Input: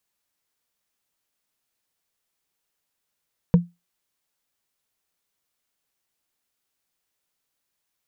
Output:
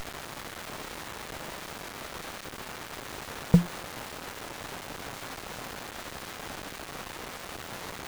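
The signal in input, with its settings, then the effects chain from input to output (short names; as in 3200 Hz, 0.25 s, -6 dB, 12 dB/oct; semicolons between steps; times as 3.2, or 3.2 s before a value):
wood hit, lowest mode 173 Hz, decay 0.21 s, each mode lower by 9.5 dB, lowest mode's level -7 dB
requantised 6-bit, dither triangular; running maximum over 17 samples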